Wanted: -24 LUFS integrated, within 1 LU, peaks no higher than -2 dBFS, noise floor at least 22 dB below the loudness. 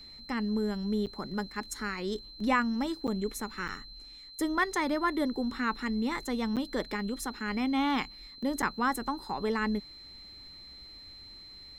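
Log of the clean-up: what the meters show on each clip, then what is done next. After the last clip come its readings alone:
dropouts 5; longest dropout 7.8 ms; steady tone 4100 Hz; tone level -47 dBFS; loudness -32.0 LUFS; peak -16.0 dBFS; loudness target -24.0 LUFS
-> interpolate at 1.06/3.07/3.68/6.56/8.62, 7.8 ms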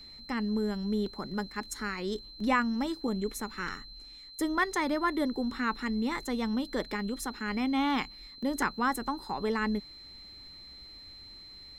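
dropouts 0; steady tone 4100 Hz; tone level -47 dBFS
-> notch 4100 Hz, Q 30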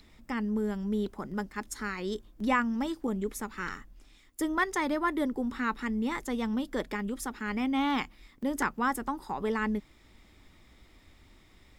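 steady tone none; loudness -32.0 LUFS; peak -16.5 dBFS; loudness target -24.0 LUFS
-> gain +8 dB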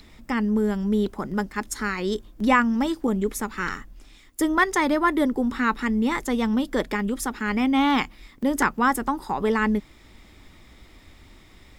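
loudness -24.0 LUFS; peak -8.5 dBFS; noise floor -52 dBFS

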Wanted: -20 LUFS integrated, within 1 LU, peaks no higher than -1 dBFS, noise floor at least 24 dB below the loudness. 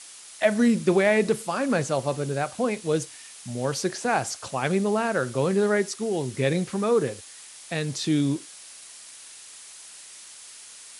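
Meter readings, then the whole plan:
noise floor -45 dBFS; noise floor target -49 dBFS; loudness -25.0 LUFS; peak -8.0 dBFS; loudness target -20.0 LUFS
-> denoiser 6 dB, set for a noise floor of -45 dBFS; gain +5 dB

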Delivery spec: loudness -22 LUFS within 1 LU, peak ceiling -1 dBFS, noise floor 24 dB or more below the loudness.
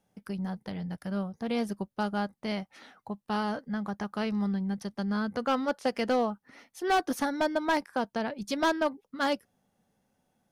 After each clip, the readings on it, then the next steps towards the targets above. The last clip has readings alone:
clipped 0.6%; flat tops at -20.5 dBFS; loudness -31.0 LUFS; peak -20.5 dBFS; loudness target -22.0 LUFS
-> clip repair -20.5 dBFS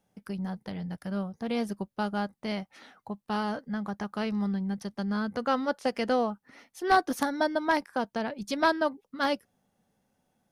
clipped 0.0%; loudness -30.5 LUFS; peak -11.5 dBFS; loudness target -22.0 LUFS
-> gain +8.5 dB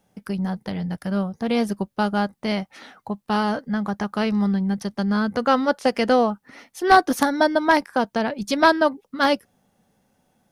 loudness -22.0 LUFS; peak -3.0 dBFS; noise floor -70 dBFS

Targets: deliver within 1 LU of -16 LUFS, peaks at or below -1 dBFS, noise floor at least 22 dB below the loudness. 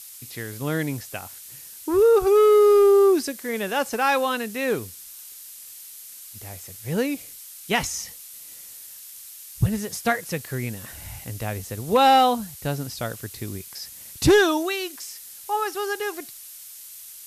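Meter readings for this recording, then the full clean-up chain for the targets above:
noise floor -42 dBFS; noise floor target -44 dBFS; loudness -22.0 LUFS; peak -9.0 dBFS; loudness target -16.0 LUFS
-> denoiser 6 dB, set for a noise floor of -42 dBFS; gain +6 dB

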